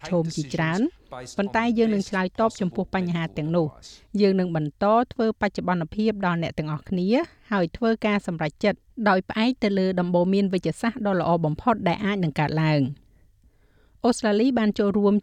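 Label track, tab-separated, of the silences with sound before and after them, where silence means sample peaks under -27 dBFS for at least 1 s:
12.910000	14.040000	silence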